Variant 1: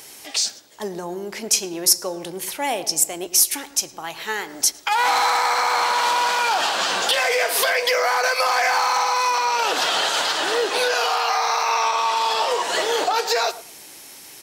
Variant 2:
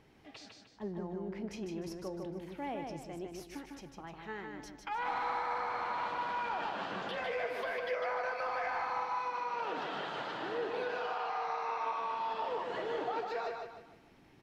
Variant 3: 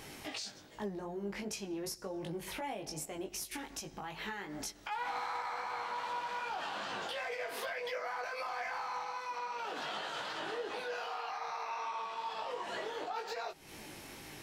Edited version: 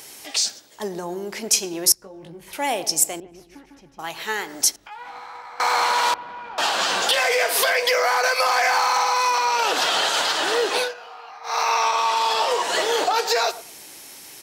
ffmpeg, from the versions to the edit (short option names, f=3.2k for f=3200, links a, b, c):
-filter_complex "[2:a]asplit=3[a][b][c];[1:a]asplit=2[d][e];[0:a]asplit=6[f][g][h][i][j][k];[f]atrim=end=1.922[l];[a]atrim=start=1.918:end=2.532[m];[g]atrim=start=2.528:end=3.202[n];[d]atrim=start=3.198:end=3.992[o];[h]atrim=start=3.988:end=4.762[p];[b]atrim=start=4.758:end=5.602[q];[i]atrim=start=5.598:end=6.142[r];[e]atrim=start=6.138:end=6.582[s];[j]atrim=start=6.578:end=10.94[t];[c]atrim=start=10.78:end=11.59[u];[k]atrim=start=11.43[v];[l][m]acrossfade=d=0.004:c1=hsin:c2=hsin[w];[w][n]acrossfade=d=0.004:c1=hsin:c2=hsin[x];[x][o]acrossfade=d=0.004:c1=hsin:c2=hsin[y];[y][p]acrossfade=d=0.004:c1=hsin:c2=hsin[z];[z][q]acrossfade=d=0.004:c1=hsin:c2=hsin[aa];[aa][r]acrossfade=d=0.004:c1=hsin:c2=hsin[ab];[ab][s]acrossfade=d=0.004:c1=hsin:c2=hsin[ac];[ac][t]acrossfade=d=0.004:c1=hsin:c2=hsin[ad];[ad][u]acrossfade=d=0.16:c1=tri:c2=tri[ae];[ae][v]acrossfade=d=0.16:c1=tri:c2=tri"